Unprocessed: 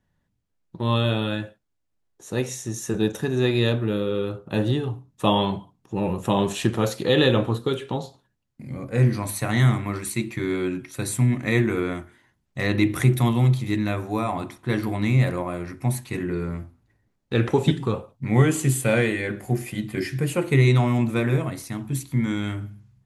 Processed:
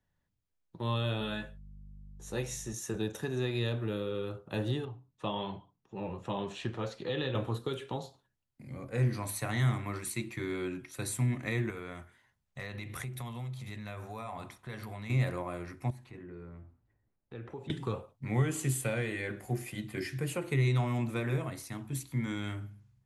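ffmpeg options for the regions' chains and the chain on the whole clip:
-filter_complex "[0:a]asettb=1/sr,asplit=3[a][b][c];[a]atrim=end=1.194[d];[b]atrim=start=1.19:end=2.73,asetpts=PTS-STARTPTS,afade=t=in:d=0.004:c=qsin,afade=t=out:st=1.536:d=0.004:c=qsin,aeval=exprs='val(0)+0.01*(sin(2*PI*50*n/s)+sin(2*PI*2*50*n/s)/2+sin(2*PI*3*50*n/s)/3+sin(2*PI*4*50*n/s)/4+sin(2*PI*5*50*n/s)/5)':c=same,asplit=2[e][f];[f]adelay=14,volume=-5dB[g];[e][g]amix=inputs=2:normalize=0,atrim=end_sample=67914[h];[c]atrim=start=2.726[i];[d][h]acrossfade=d=0.004:c1=hsin:c2=qsin[j];[j][i]acrossfade=d=0.004:c1=qsin:c2=hsin,asettb=1/sr,asplit=3[k][l][m];[k]atrim=end=4.854[n];[l]atrim=start=4.85:end=7.35,asetpts=PTS-STARTPTS,afade=t=in:d=0.004:c=qsin,afade=t=out:st=2.496:d=0.004:c=qsin,lowpass=4.7k,flanger=delay=4.1:depth=3.8:regen=-58:speed=1.9:shape=triangular[o];[m]atrim=start=7.346[p];[n][o]acrossfade=d=0.004:c1=hsin:c2=qsin[q];[q][p]acrossfade=d=0.004:c1=qsin:c2=hsin,asettb=1/sr,asplit=3[r][s][t];[r]atrim=end=11.704[u];[s]atrim=start=11.7:end=15.1,asetpts=PTS-STARTPTS,afade=t=in:d=0.004:c=qsin,afade=t=out:st=3.396:d=0.004:c=qsin,equalizer=f=320:t=o:w=0.3:g=-14,acompressor=threshold=-29dB:ratio=4:attack=3.2:release=140:knee=1:detection=peak[v];[t]atrim=start=15.096[w];[u][v]acrossfade=d=0.004:c1=hsin:c2=qsin[x];[x][w]acrossfade=d=0.004:c1=qsin:c2=hsin,asettb=1/sr,asplit=3[y][z][aa];[y]atrim=end=15.904[ab];[z]atrim=start=15.9:end=17.7,asetpts=PTS-STARTPTS,afade=t=in:d=0.004:c=qsin,afade=t=out:st=1.796:d=0.004:c=qsin,lowpass=f=1.3k:p=1,acompressor=threshold=-41dB:ratio=2:attack=3.2:release=140:knee=1:detection=peak[ac];[aa]atrim=start=17.696[ad];[ab][ac]acrossfade=d=0.004:c1=hsin:c2=qsin[ae];[ae][ad]acrossfade=d=0.004:c1=qsin:c2=hsin,equalizer=f=210:w=0.87:g=-4.5,acrossover=split=180[af][ag];[ag]acompressor=threshold=-24dB:ratio=6[ah];[af][ah]amix=inputs=2:normalize=0,volume=-7dB"

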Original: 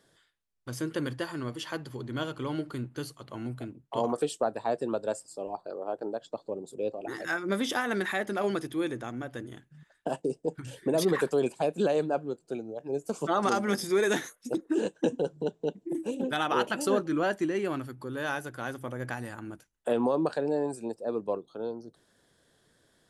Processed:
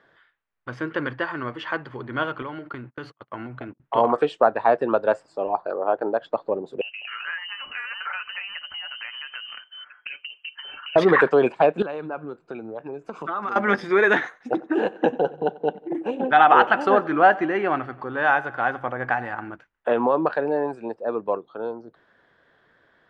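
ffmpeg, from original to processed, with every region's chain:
-filter_complex "[0:a]asettb=1/sr,asplit=3[a][b][c];[a]atrim=end=2.424[d];[b]atrim=start=2.42:end=3.8,asetpts=PTS-STARTPTS,afade=t=in:d=0.004:c=qsin,afade=t=out:st=1.376:d=0.004:c=qsin,agate=range=-31dB:threshold=-45dB:ratio=16:release=100:detection=peak,acompressor=threshold=-35dB:ratio=10:attack=3.2:release=140:knee=1:detection=peak[e];[c]atrim=start=3.796[f];[d][e]acrossfade=d=0.004:c1=hsin:c2=qsin[g];[g][f]acrossfade=d=0.004:c1=qsin:c2=hsin,asettb=1/sr,asplit=3[h][i][j];[h]atrim=end=6.814[k];[i]atrim=start=6.81:end=10.96,asetpts=PTS-STARTPTS,afade=t=in:d=0.004:c=qsin,afade=t=out:st=4.146:d=0.004:c=qsin,aecho=1:1:6.5:0.42,atrim=end_sample=183015,acompressor=threshold=-43dB:ratio=8:attack=3.2:release=140:knee=1:detection=peak,lowpass=f=2.7k:t=q:w=0.5098,lowpass=f=2.7k:t=q:w=0.6013,lowpass=f=2.7k:t=q:w=0.9,lowpass=f=2.7k:t=q:w=2.563,afreqshift=-3200[l];[j]atrim=start=10.956[m];[k][l]acrossfade=d=0.004:c1=hsin:c2=qsin[n];[n][m]acrossfade=d=0.004:c1=qsin:c2=hsin,asettb=1/sr,asplit=3[o][p][q];[o]atrim=end=11.824[r];[p]atrim=start=11.82:end=13.56,asetpts=PTS-STARTPTS,afade=t=in:d=0.004:c=qsin,afade=t=out:st=1.736:d=0.004:c=qsin,aecho=1:1:0.8:0.33,atrim=end_sample=76734,acompressor=threshold=-36dB:ratio=8:attack=3.2:release=140:knee=1:detection=peak[s];[q]atrim=start=13.556[t];[r][s]acrossfade=d=0.004:c1=hsin:c2=qsin[u];[u][t]acrossfade=d=0.004:c1=qsin:c2=hsin,asettb=1/sr,asplit=3[v][w][x];[v]atrim=end=14.224[y];[w]atrim=start=14.22:end=19.49,asetpts=PTS-STARTPTS,afade=t=in:d=0.004:c=qsin,afade=t=out:st=5.266:d=0.004:c=qsin,equalizer=f=760:t=o:w=0.26:g=10.5,aecho=1:1:92|184|276|368|460:0.0891|0.0526|0.031|0.0183|0.0108,atrim=end_sample=232407[z];[x]atrim=start=19.486[aa];[y][z]acrossfade=d=0.004:c1=hsin:c2=qsin[ab];[ab][aa]acrossfade=d=0.004:c1=qsin:c2=hsin,lowpass=2.2k,equalizer=f=1.6k:w=0.37:g=14,dynaudnorm=f=380:g=21:m=11.5dB,volume=-1dB"

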